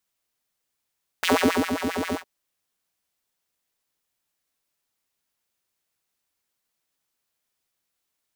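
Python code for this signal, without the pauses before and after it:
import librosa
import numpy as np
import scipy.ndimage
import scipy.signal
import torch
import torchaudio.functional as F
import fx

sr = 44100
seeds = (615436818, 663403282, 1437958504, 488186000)

y = fx.sub_patch_wobble(sr, seeds[0], note=41, wave='square', wave2='saw', interval_st=0, level2_db=-9.0, sub_db=-15.0, noise_db=-21.0, kind='highpass', cutoff_hz=520.0, q=2.9, env_oct=1.0, env_decay_s=0.27, env_sustain_pct=40, attack_ms=1.5, decay_s=0.47, sustain_db=-10.0, release_s=0.1, note_s=0.91, lfo_hz=7.5, wobble_oct=1.7)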